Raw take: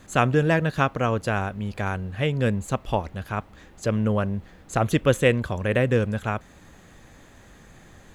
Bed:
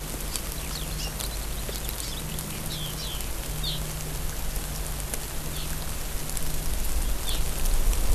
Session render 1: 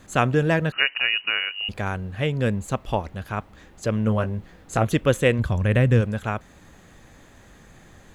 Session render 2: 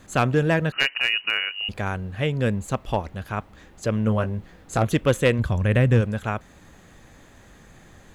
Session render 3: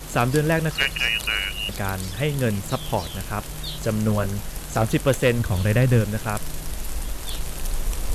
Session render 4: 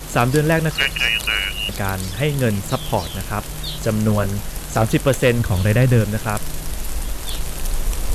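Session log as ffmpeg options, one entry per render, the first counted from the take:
ffmpeg -i in.wav -filter_complex "[0:a]asettb=1/sr,asplit=3[link_01][link_02][link_03];[link_01]atrim=end=0.724[link_04];[link_02]atrim=start=0.72:end=1.69,asetpts=PTS-STARTPTS,afade=type=in:duration=0.004:curve=qsin,afade=type=out:start_time=0.966:duration=0.004:curve=qsin,lowpass=frequency=2600:width_type=q:width=0.5098,lowpass=frequency=2600:width_type=q:width=0.6013,lowpass=frequency=2600:width_type=q:width=0.9,lowpass=frequency=2600:width_type=q:width=2.563,afreqshift=-3000[link_05];[link_03]atrim=start=1.686[link_06];[link_04][link_05]acrossfade=duration=0.004:curve1=hsin:curve2=qsin[link_07];[link_07][link_06]acrossfade=duration=0.004:curve1=qsin:curve2=hsin,asettb=1/sr,asplit=3[link_08][link_09][link_10];[link_08]atrim=end=4.054[link_11];[link_09]atrim=start=4.05:end=4.85,asetpts=PTS-STARTPTS,afade=type=in:duration=0.004:curve=qsin,afade=type=out:start_time=0.796:duration=0.004:curve=qsin,asplit=2[link_12][link_13];[link_13]adelay=18,volume=-8dB[link_14];[link_12][link_14]amix=inputs=2:normalize=0,atrim=end_sample=35280[link_15];[link_10]atrim=start=4.846[link_16];[link_11][link_15]acrossfade=duration=0.004:curve1=hsin:curve2=qsin[link_17];[link_17][link_16]acrossfade=duration=0.004:curve1=qsin:curve2=hsin,asplit=3[link_18][link_19][link_20];[link_18]afade=type=out:start_time=5.38:duration=0.02[link_21];[link_19]asubboost=boost=2.5:cutoff=220,afade=type=in:start_time=5.38:duration=0.02,afade=type=out:start_time=6:duration=0.02[link_22];[link_20]afade=type=in:start_time=6:duration=0.02[link_23];[link_21][link_22][link_23]amix=inputs=3:normalize=0" out.wav
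ffmpeg -i in.wav -af "aeval=exprs='clip(val(0),-1,0.224)':channel_layout=same" out.wav
ffmpeg -i in.wav -i bed.wav -filter_complex "[1:a]volume=-2dB[link_01];[0:a][link_01]amix=inputs=2:normalize=0" out.wav
ffmpeg -i in.wav -af "volume=4dB,alimiter=limit=-3dB:level=0:latency=1" out.wav

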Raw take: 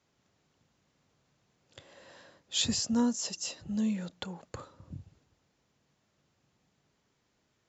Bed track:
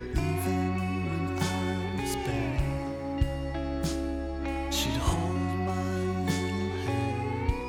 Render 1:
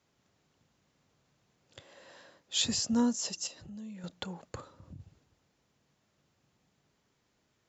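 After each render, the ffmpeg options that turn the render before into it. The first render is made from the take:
ffmpeg -i in.wav -filter_complex "[0:a]asettb=1/sr,asplit=3[link_01][link_02][link_03];[link_01]atrim=end=1.804[link_04];[link_02]atrim=start=1.8:end=2.74,asetpts=PTS-STARTPTS,afade=type=in:duration=0.004:curve=qsin,afade=type=out:start_time=0.936:duration=0.004:curve=qsin,lowshelf=frequency=160:gain=-7.5[link_05];[link_03]atrim=start=2.736[link_06];[link_04][link_05]acrossfade=duration=0.004:curve1=hsin:curve2=qsin[link_07];[link_07][link_06]acrossfade=duration=0.004:curve1=qsin:curve2=hsin,asettb=1/sr,asplit=3[link_08][link_09][link_10];[link_08]atrim=end=3.474[link_11];[link_09]atrim=start=3.47:end=4.04,asetpts=PTS-STARTPTS,afade=type=in:duration=0.004:curve=qsin,afade=type=out:start_time=0.566:duration=0.004:curve=qsin,acompressor=threshold=-47dB:ratio=3:attack=3.2:release=140:knee=1:detection=peak[link_12];[link_10]atrim=start=4.036[link_13];[link_11][link_12]acrossfade=duration=0.004:curve1=hsin:curve2=qsin[link_14];[link_14][link_13]acrossfade=duration=0.004:curve1=qsin:curve2=hsin,asettb=1/sr,asplit=3[link_15][link_16][link_17];[link_15]atrim=end=4.604[link_18];[link_16]atrim=start=4.6:end=5,asetpts=PTS-STARTPTS,afade=type=in:duration=0.004:curve=qsin,afade=type=out:start_time=0.396:duration=0.004:curve=qsin,acompressor=threshold=-47dB:ratio=2:attack=3.2:release=140:knee=1:detection=peak[link_19];[link_17]atrim=start=4.996[link_20];[link_18][link_19]acrossfade=duration=0.004:curve1=hsin:curve2=qsin[link_21];[link_21][link_20]acrossfade=duration=0.004:curve1=qsin:curve2=hsin" out.wav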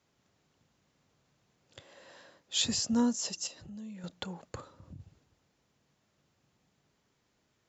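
ffmpeg -i in.wav -af anull out.wav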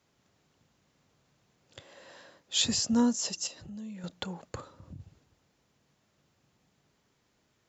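ffmpeg -i in.wav -af "volume=2.5dB" out.wav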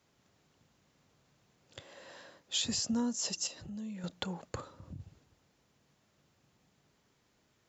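ffmpeg -i in.wav -af "acompressor=threshold=-30dB:ratio=6" out.wav

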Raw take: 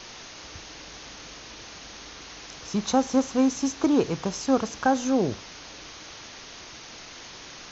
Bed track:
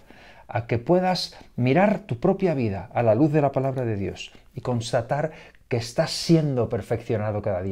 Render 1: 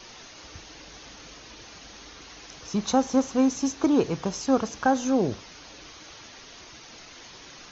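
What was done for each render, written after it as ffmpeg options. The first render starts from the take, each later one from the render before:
ffmpeg -i in.wav -af "afftdn=noise_reduction=6:noise_floor=-44" out.wav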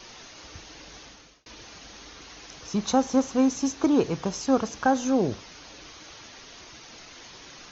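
ffmpeg -i in.wav -filter_complex "[0:a]asplit=2[link_01][link_02];[link_01]atrim=end=1.46,asetpts=PTS-STARTPTS,afade=type=out:start_time=0.99:duration=0.47[link_03];[link_02]atrim=start=1.46,asetpts=PTS-STARTPTS,afade=type=in:duration=0.004:curve=hsin[link_04];[link_03][link_04]concat=n=2:v=0:a=1" out.wav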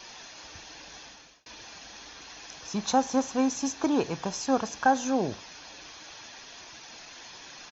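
ffmpeg -i in.wav -af "lowshelf=frequency=190:gain=-11,aecho=1:1:1.2:0.3" out.wav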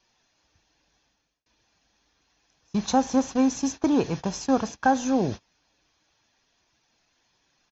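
ffmpeg -i in.wav -af "agate=range=-24dB:threshold=-35dB:ratio=16:detection=peak,lowshelf=frequency=240:gain=10" out.wav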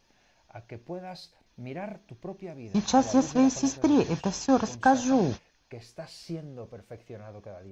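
ffmpeg -i in.wav -i bed.wav -filter_complex "[1:a]volume=-18.5dB[link_01];[0:a][link_01]amix=inputs=2:normalize=0" out.wav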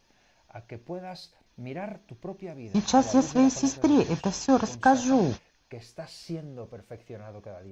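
ffmpeg -i in.wav -af "volume=1dB" out.wav

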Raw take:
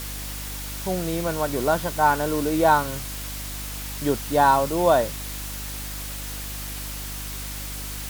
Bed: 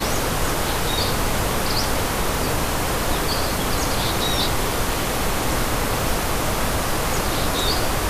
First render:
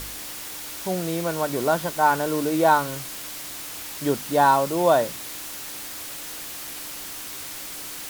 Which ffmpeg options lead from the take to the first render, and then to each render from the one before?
ffmpeg -i in.wav -af "bandreject=frequency=50:width_type=h:width=4,bandreject=frequency=100:width_type=h:width=4,bandreject=frequency=150:width_type=h:width=4,bandreject=frequency=200:width_type=h:width=4,bandreject=frequency=250:width_type=h:width=4" out.wav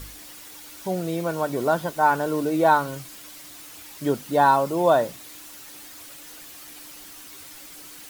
ffmpeg -i in.wav -af "afftdn=noise_reduction=9:noise_floor=-36" out.wav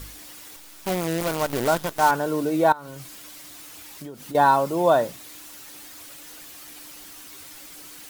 ffmpeg -i in.wav -filter_complex "[0:a]asettb=1/sr,asplit=3[link_01][link_02][link_03];[link_01]atrim=end=0.564[link_04];[link_02]atrim=start=0.56:end=2.11,asetpts=PTS-STARTPTS,afade=type=in:duration=0.004:curve=qsin,afade=type=out:start_time=1.546:duration=0.004:curve=qsin,acrusher=bits=5:dc=4:mix=0:aa=0.000001[link_05];[link_03]atrim=start=2.106[link_06];[link_04][link_05]acrossfade=duration=0.004:curve1=hsin:curve2=qsin[link_07];[link_07][link_06]acrossfade=duration=0.004:curve1=qsin:curve2=hsin,asettb=1/sr,asplit=3[link_08][link_09][link_10];[link_08]atrim=end=2.724[link_11];[link_09]atrim=start=2.72:end=4.35,asetpts=PTS-STARTPTS,afade=type=in:duration=0.004:curve=qsin,afade=type=out:start_time=1.626:duration=0.004:curve=qsin,acompressor=threshold=-33dB:ratio=16:attack=3.2:release=140:knee=1:detection=peak[link_12];[link_10]atrim=start=4.346[link_13];[link_11][link_12]acrossfade=duration=0.004:curve1=hsin:curve2=qsin[link_14];[link_14][link_13]acrossfade=duration=0.004:curve1=qsin:curve2=hsin" out.wav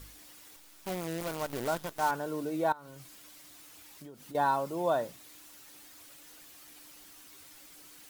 ffmpeg -i in.wav -af "volume=-10.5dB" out.wav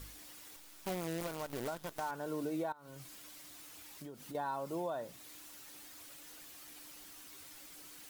ffmpeg -i in.wav -af "acompressor=threshold=-34dB:ratio=3,alimiter=level_in=4.5dB:limit=-24dB:level=0:latency=1:release=394,volume=-4.5dB" out.wav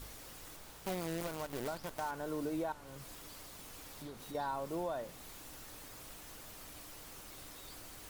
ffmpeg -i in.wav -i bed.wav -filter_complex "[1:a]volume=-34dB[link_01];[0:a][link_01]amix=inputs=2:normalize=0" out.wav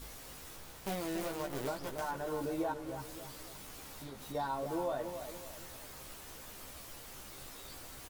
ffmpeg -i in.wav -filter_complex "[0:a]asplit=2[link_01][link_02];[link_02]adelay=15,volume=-4dB[link_03];[link_01][link_03]amix=inputs=2:normalize=0,asplit=2[link_04][link_05];[link_05]adelay=282,lowpass=frequency=2000:poles=1,volume=-8dB,asplit=2[link_06][link_07];[link_07]adelay=282,lowpass=frequency=2000:poles=1,volume=0.42,asplit=2[link_08][link_09];[link_09]adelay=282,lowpass=frequency=2000:poles=1,volume=0.42,asplit=2[link_10][link_11];[link_11]adelay=282,lowpass=frequency=2000:poles=1,volume=0.42,asplit=2[link_12][link_13];[link_13]adelay=282,lowpass=frequency=2000:poles=1,volume=0.42[link_14];[link_04][link_06][link_08][link_10][link_12][link_14]amix=inputs=6:normalize=0" out.wav

